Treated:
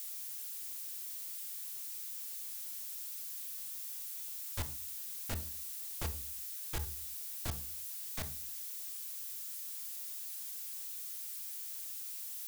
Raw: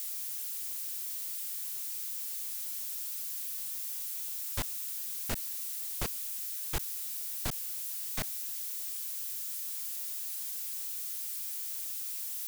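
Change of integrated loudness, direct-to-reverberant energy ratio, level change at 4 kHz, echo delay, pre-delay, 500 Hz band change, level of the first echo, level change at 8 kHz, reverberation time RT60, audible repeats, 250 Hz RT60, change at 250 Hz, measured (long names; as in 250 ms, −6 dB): −5.5 dB, 8.0 dB, −5.0 dB, no echo audible, 3 ms, −4.5 dB, no echo audible, −5.5 dB, 0.45 s, no echo audible, 0.55 s, −4.5 dB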